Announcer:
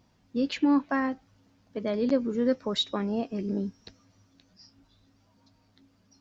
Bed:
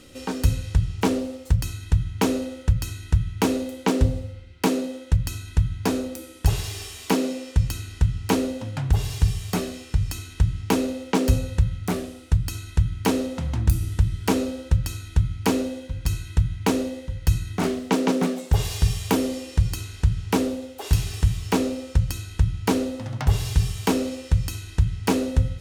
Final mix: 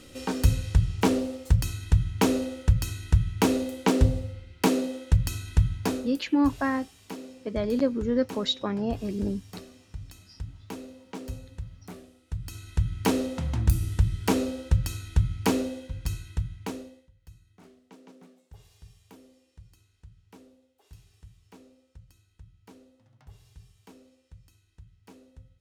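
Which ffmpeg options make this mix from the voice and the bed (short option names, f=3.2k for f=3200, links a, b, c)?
-filter_complex "[0:a]adelay=5700,volume=0.5dB[a];[1:a]volume=14dB,afade=t=out:st=5.66:d=0.59:silence=0.149624,afade=t=in:st=12.25:d=0.8:silence=0.177828,afade=t=out:st=15.48:d=1.63:silence=0.0398107[b];[a][b]amix=inputs=2:normalize=0"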